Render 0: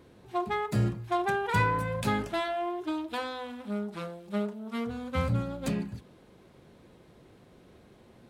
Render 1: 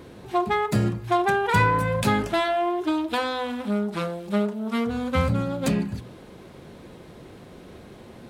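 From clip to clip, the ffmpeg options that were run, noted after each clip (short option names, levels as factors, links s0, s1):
-filter_complex "[0:a]asplit=2[s0][s1];[s1]acompressor=threshold=0.0141:ratio=6,volume=1.41[s2];[s0][s2]amix=inputs=2:normalize=0,bandreject=f=60:t=h:w=6,bandreject=f=120:t=h:w=6,volume=1.58"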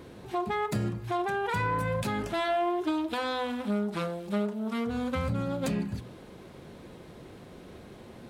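-af "alimiter=limit=0.126:level=0:latency=1:release=169,volume=0.708"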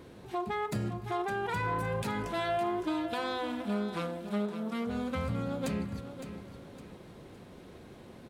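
-af "aecho=1:1:561|1122|1683|2244:0.299|0.107|0.0387|0.0139,volume=0.668"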